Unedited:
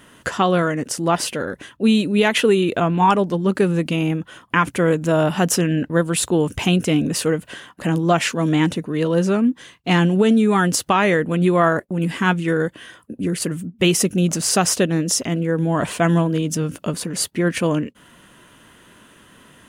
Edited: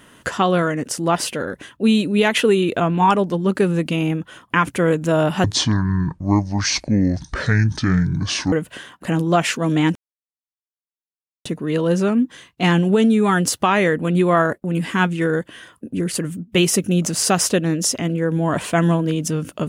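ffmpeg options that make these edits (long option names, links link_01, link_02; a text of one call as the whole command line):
ffmpeg -i in.wav -filter_complex "[0:a]asplit=4[link_01][link_02][link_03][link_04];[link_01]atrim=end=5.444[link_05];[link_02]atrim=start=5.44:end=7.29,asetpts=PTS-STARTPTS,asetrate=26460,aresample=44100[link_06];[link_03]atrim=start=7.286:end=8.72,asetpts=PTS-STARTPTS,afade=type=out:start_time=1.43:duration=0.004:curve=hsin,apad=pad_dur=1.5[link_07];[link_04]atrim=start=8.72,asetpts=PTS-STARTPTS,afade=type=in:duration=0.004:curve=hsin[link_08];[link_05][link_06]acrossfade=duration=0.004:curve1=hsin:curve2=hsin[link_09];[link_07][link_08]concat=n=2:v=0:a=1[link_10];[link_09][link_10]acrossfade=duration=0.004:curve1=hsin:curve2=hsin" out.wav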